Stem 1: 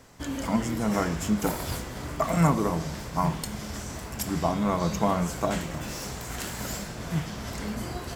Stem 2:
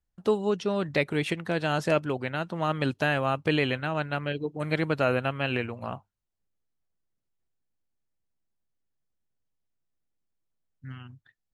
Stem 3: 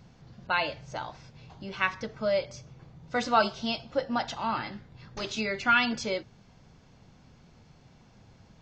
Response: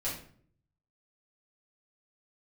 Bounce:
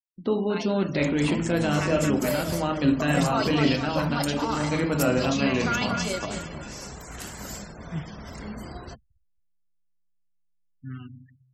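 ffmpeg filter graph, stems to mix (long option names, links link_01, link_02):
-filter_complex "[0:a]bandreject=frequency=120.3:width_type=h:width=4,bandreject=frequency=240.6:width_type=h:width=4,bandreject=frequency=360.9:width_type=h:width=4,bandreject=frequency=481.2:width_type=h:width=4,bandreject=frequency=601.5:width_type=h:width=4,bandreject=frequency=721.8:width_type=h:width=4,bandreject=frequency=842.1:width_type=h:width=4,bandreject=frequency=962.4:width_type=h:width=4,bandreject=frequency=1082.7:width_type=h:width=4,bandreject=frequency=1203:width_type=h:width=4,bandreject=frequency=1323.3:width_type=h:width=4,bandreject=frequency=1443.6:width_type=h:width=4,bandreject=frequency=1563.9:width_type=h:width=4,bandreject=frequency=1684.2:width_type=h:width=4,bandreject=frequency=1804.5:width_type=h:width=4,bandreject=frequency=1924.8:width_type=h:width=4,bandreject=frequency=2045.1:width_type=h:width=4,bandreject=frequency=2165.4:width_type=h:width=4,bandreject=frequency=2285.7:width_type=h:width=4,bandreject=frequency=2406:width_type=h:width=4,bandreject=frequency=2526.3:width_type=h:width=4,bandreject=frequency=2646.6:width_type=h:width=4,bandreject=frequency=2766.9:width_type=h:width=4,bandreject=frequency=2887.2:width_type=h:width=4,bandreject=frequency=3007.5:width_type=h:width=4,bandreject=frequency=3127.8:width_type=h:width=4,bandreject=frequency=3248.1:width_type=h:width=4,bandreject=frequency=3368.4:width_type=h:width=4,bandreject=frequency=3488.7:width_type=h:width=4,bandreject=frequency=3609:width_type=h:width=4,bandreject=frequency=3729.3:width_type=h:width=4,bandreject=frequency=3849.6:width_type=h:width=4,bandreject=frequency=3969.9:width_type=h:width=4,bandreject=frequency=4090.2:width_type=h:width=4,bandreject=frequency=4210.5:width_type=h:width=4,acrossover=split=160|3000[link_01][link_02][link_03];[link_02]acompressor=threshold=-26dB:ratio=6[link_04];[link_01][link_04][link_03]amix=inputs=3:normalize=0,adelay=800,volume=-3.5dB,asplit=2[link_05][link_06];[link_06]volume=-23.5dB[link_07];[1:a]equalizer=frequency=270:width_type=o:width=0.96:gain=9,volume=-4dB,asplit=2[link_08][link_09];[link_09]volume=-5dB[link_10];[2:a]tremolo=f=28:d=0.462,dynaudnorm=framelen=180:gausssize=11:maxgain=16.5dB,acrusher=bits=5:mix=0:aa=0.000001,volume=-9.5dB,asplit=2[link_11][link_12];[link_12]volume=-10dB[link_13];[link_08][link_11]amix=inputs=2:normalize=0,alimiter=limit=-19dB:level=0:latency=1:release=26,volume=0dB[link_14];[3:a]atrim=start_sample=2205[link_15];[link_10][link_15]afir=irnorm=-1:irlink=0[link_16];[link_07][link_13]amix=inputs=2:normalize=0,aecho=0:1:228|456|684|912|1140|1368|1596:1|0.49|0.24|0.118|0.0576|0.0282|0.0138[link_17];[link_05][link_14][link_16][link_17]amix=inputs=4:normalize=0,afftfilt=real='re*gte(hypot(re,im),0.00708)':imag='im*gte(hypot(re,im),0.00708)':win_size=1024:overlap=0.75,adynamicequalizer=threshold=0.00708:dfrequency=4100:dqfactor=0.7:tfrequency=4100:tqfactor=0.7:attack=5:release=100:ratio=0.375:range=3:mode=boostabove:tftype=highshelf"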